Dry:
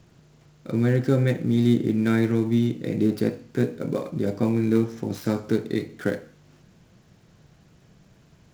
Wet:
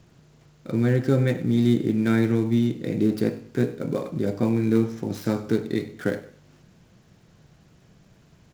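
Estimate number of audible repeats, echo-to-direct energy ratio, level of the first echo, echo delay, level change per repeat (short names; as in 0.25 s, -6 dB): 2, -17.0 dB, -17.5 dB, 98 ms, -11.0 dB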